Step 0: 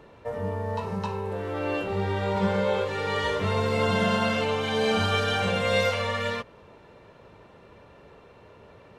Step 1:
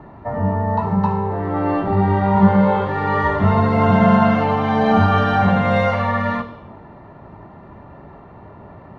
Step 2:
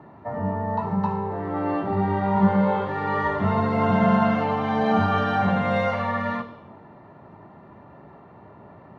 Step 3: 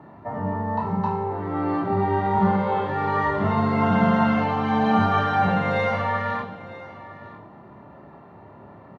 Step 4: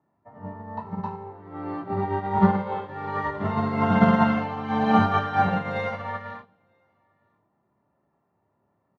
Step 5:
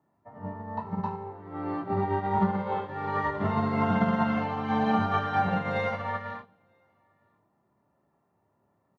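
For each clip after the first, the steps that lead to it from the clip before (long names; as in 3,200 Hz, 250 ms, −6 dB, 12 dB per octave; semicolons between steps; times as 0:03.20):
high-shelf EQ 7,500 Hz −10.5 dB; convolution reverb RT60 1.1 s, pre-delay 3 ms, DRR 13 dB
high-pass filter 110 Hz 12 dB per octave; level −5.5 dB
double-tracking delay 28 ms −5 dB; single-tap delay 956 ms −17 dB
expander for the loud parts 2.5 to 1, over −36 dBFS; level +4 dB
downward compressor 4 to 1, threshold −22 dBFS, peak gain reduction 9 dB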